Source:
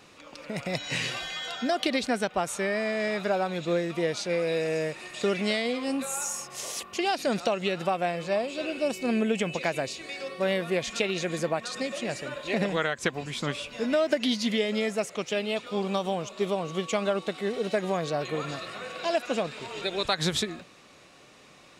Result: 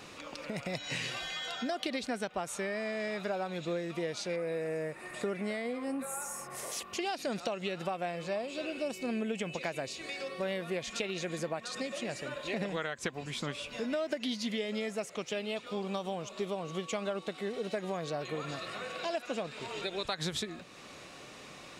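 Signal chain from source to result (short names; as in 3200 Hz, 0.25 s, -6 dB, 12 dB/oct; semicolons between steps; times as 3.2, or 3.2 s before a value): 4.36–6.72 band shelf 4300 Hz -10.5 dB; compressor 2:1, threshold -47 dBFS, peak gain reduction 15 dB; gain +4.5 dB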